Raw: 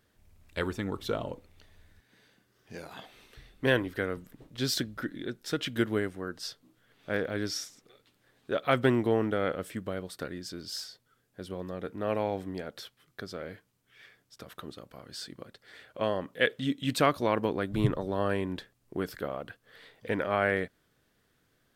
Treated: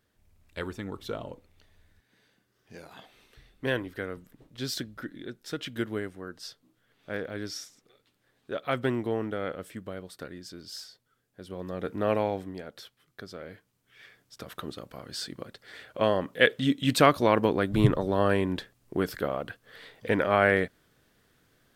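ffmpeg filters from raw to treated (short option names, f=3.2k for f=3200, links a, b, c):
-af "volume=13dB,afade=t=in:st=11.44:d=0.54:silence=0.354813,afade=t=out:st=11.98:d=0.56:silence=0.398107,afade=t=in:st=13.46:d=1.11:silence=0.421697"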